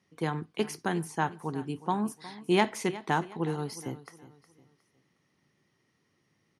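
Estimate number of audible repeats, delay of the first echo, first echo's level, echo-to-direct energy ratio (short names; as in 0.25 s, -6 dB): 3, 0.362 s, -17.0 dB, -16.5 dB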